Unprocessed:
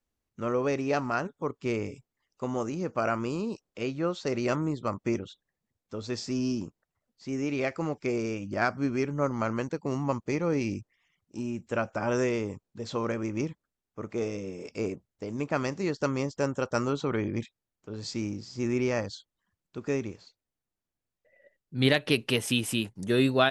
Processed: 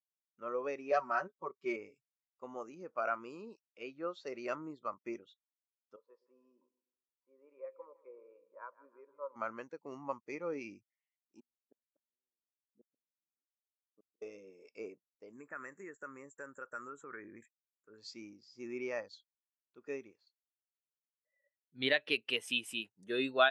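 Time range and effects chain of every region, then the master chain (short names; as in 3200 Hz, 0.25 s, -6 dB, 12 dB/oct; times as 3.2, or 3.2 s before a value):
0.91–1.76 HPF 41 Hz + notch 2700 Hz, Q 13 + comb 5.3 ms, depth 92%
5.96–9.36 double band-pass 720 Hz, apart 0.89 oct + split-band echo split 540 Hz, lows 0.118 s, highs 0.158 s, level -12 dB
11.4–14.22 band-pass 240 Hz, Q 1.7 + flipped gate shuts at -30 dBFS, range -40 dB
15.33–17.98 EQ curve 460 Hz 0 dB, 760 Hz -5 dB, 1700 Hz +8 dB, 4700 Hz -23 dB, 7500 Hz +13 dB, 12000 Hz -11 dB + compressor, threshold -28 dBFS
whole clip: HPF 1300 Hz 6 dB/oct; high shelf 3900 Hz -5 dB; spectral expander 1.5:1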